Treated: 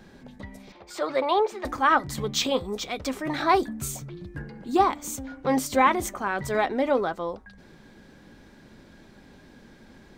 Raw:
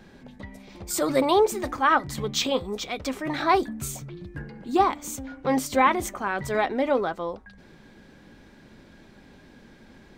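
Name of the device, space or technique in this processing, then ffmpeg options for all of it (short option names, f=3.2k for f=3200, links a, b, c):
exciter from parts: -filter_complex "[0:a]asettb=1/sr,asplit=3[a][b][c];[a]atrim=end=0.724[d];[b]atrim=start=0.72:end=1.65,asetpts=PTS-STARTPTS,afade=t=in:d=0.004:c=qsin,afade=t=out:st=0.926:d=0.004:c=qsin,acrossover=split=410 4300:gain=0.141 1 0.0631[e][f][g];[e][f][g]amix=inputs=3:normalize=0[h];[c]atrim=start=1.646[i];[d][h]acrossfade=d=0.004:c1=hsin:c2=qsin[j];[j][i]acrossfade=d=0.004:c1=qsin:c2=hsin,asplit=2[k][l];[l]highpass=f=2.3k:w=0.5412,highpass=f=2.3k:w=1.3066,asoftclip=type=tanh:threshold=-35dB,volume=-12.5dB[m];[k][m]amix=inputs=2:normalize=0"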